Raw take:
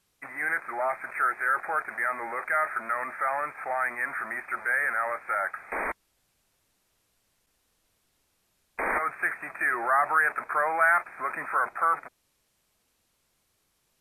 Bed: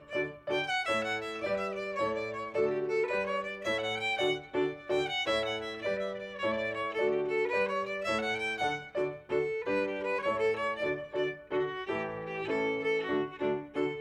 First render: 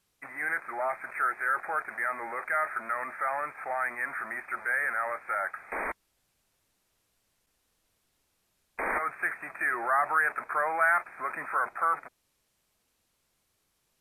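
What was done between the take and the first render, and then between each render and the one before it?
trim -2.5 dB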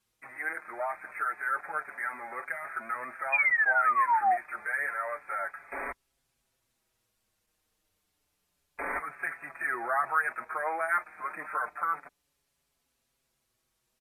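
3.32–4.37 s: painted sound fall 690–2500 Hz -22 dBFS; endless flanger 5.8 ms -0.29 Hz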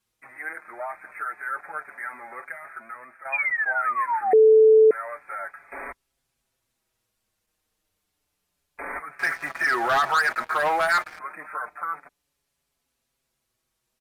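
2.33–3.25 s: fade out, to -9.5 dB; 4.33–4.91 s: bleep 438 Hz -10.5 dBFS; 9.19–11.19 s: waveshaping leveller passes 3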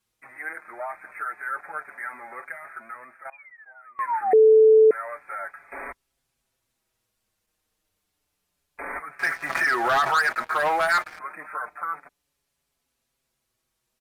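2.94–4.35 s: dip -24 dB, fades 0.36 s logarithmic; 9.49–10.14 s: swell ahead of each attack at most 52 dB/s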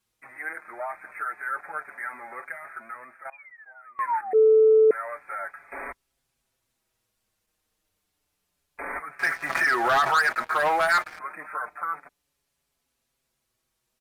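4.21–4.90 s: gate -15 dBFS, range -10 dB

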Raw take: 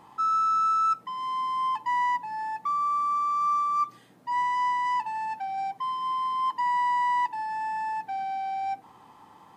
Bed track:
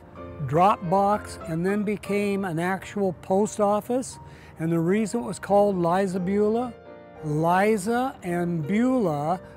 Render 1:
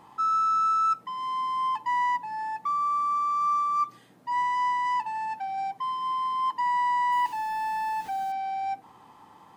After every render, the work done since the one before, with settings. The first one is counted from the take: 7.12–8.32 s: jump at every zero crossing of -39.5 dBFS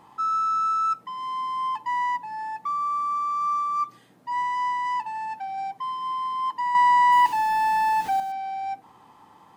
6.75–8.20 s: gain +7.5 dB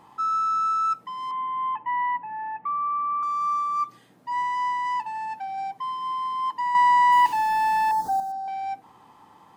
1.31–3.23 s: steep low-pass 2.7 kHz; 7.91–8.48 s: Butterworth band-stop 2.5 kHz, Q 0.63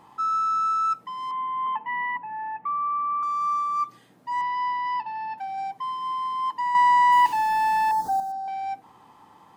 1.66–2.17 s: comb 4.5 ms, depth 99%; 4.41–5.38 s: Chebyshev low-pass 5.2 kHz, order 5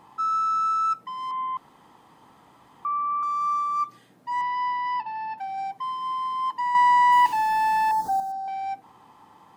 1.57–2.85 s: room tone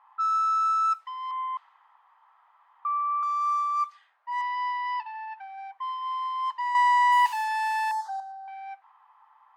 inverse Chebyshev high-pass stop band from 290 Hz, stop band 60 dB; level-controlled noise filter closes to 1.3 kHz, open at -22 dBFS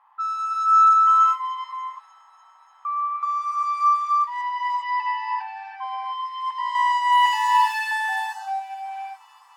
feedback echo behind a high-pass 294 ms, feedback 81%, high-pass 3.4 kHz, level -20 dB; gated-style reverb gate 440 ms rising, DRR -4 dB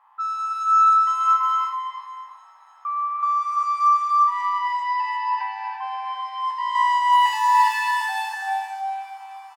spectral sustain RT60 0.45 s; delay 338 ms -6 dB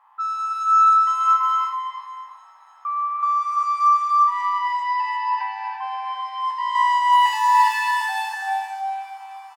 trim +1 dB

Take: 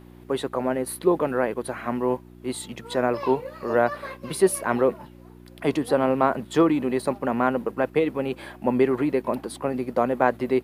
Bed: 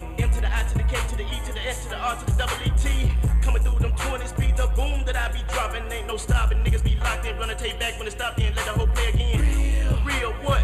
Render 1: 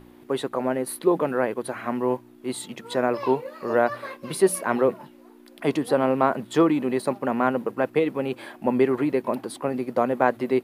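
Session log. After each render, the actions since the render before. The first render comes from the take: de-hum 60 Hz, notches 3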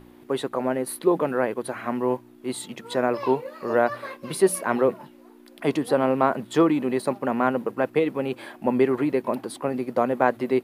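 no audible change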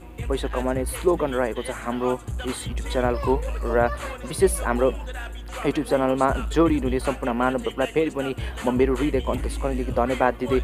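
add bed -9 dB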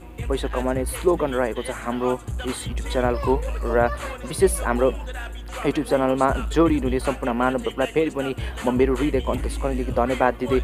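trim +1 dB

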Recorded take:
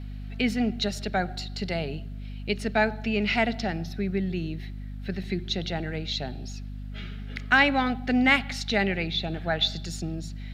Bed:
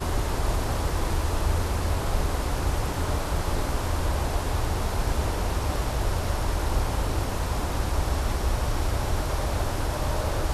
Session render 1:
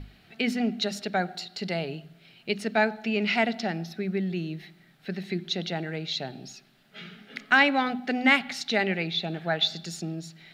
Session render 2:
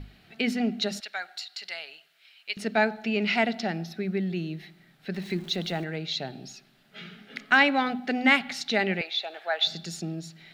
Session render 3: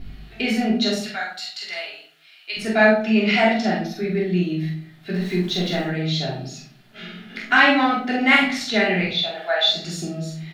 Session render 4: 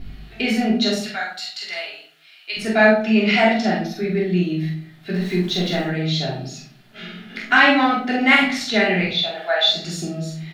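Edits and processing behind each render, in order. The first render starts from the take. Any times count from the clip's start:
hum notches 50/100/150/200/250 Hz
1.00–2.57 s: high-pass 1.4 kHz; 5.14–5.84 s: jump at every zero crossing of -44.5 dBFS; 9.01–9.67 s: high-pass 540 Hz 24 dB/octave
doubling 45 ms -3 dB; simulated room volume 420 m³, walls furnished, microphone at 3.2 m
trim +1.5 dB; peak limiter -2 dBFS, peak gain reduction 1.5 dB

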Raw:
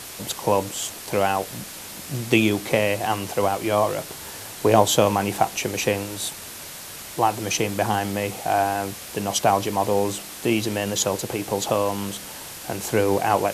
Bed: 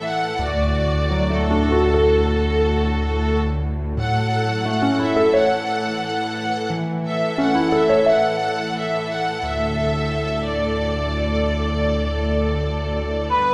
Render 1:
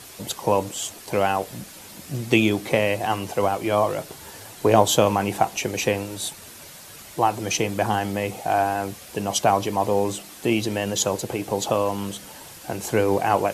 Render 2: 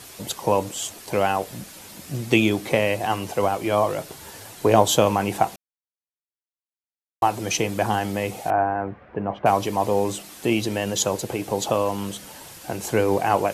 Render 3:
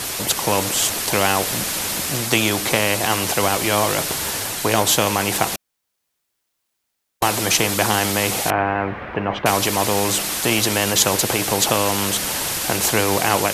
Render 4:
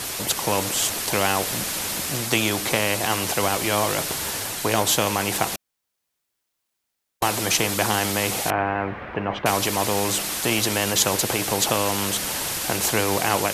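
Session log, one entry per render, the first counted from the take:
noise reduction 7 dB, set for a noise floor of -38 dBFS
5.56–7.22 s: mute; 8.50–9.46 s: low-pass 1.8 kHz 24 dB/octave
level rider gain up to 4.5 dB; spectrum-flattening compressor 2:1
trim -3.5 dB

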